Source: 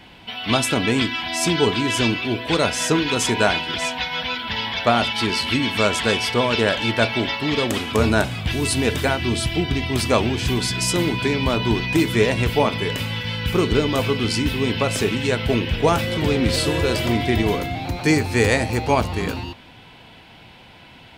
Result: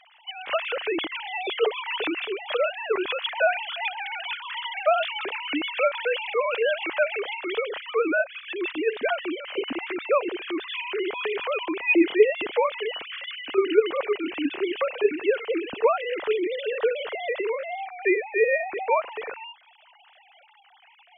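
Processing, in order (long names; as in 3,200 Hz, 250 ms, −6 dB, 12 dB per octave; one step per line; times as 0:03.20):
three sine waves on the formant tracks
level −5.5 dB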